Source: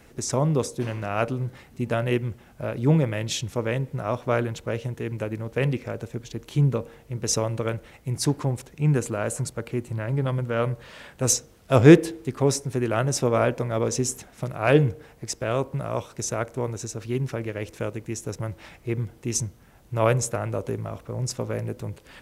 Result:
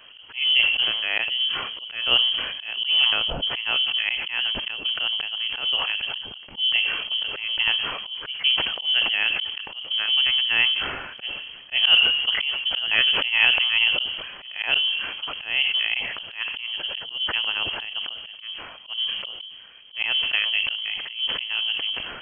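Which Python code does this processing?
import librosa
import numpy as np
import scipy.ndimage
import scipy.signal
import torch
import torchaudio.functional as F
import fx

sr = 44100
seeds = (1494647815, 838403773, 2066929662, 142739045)

y = fx.notch(x, sr, hz=980.0, q=19.0)
y = fx.freq_invert(y, sr, carrier_hz=3200)
y = fx.auto_swell(y, sr, attack_ms=203.0)
y = fx.sustainer(y, sr, db_per_s=42.0)
y = y * 10.0 ** (3.5 / 20.0)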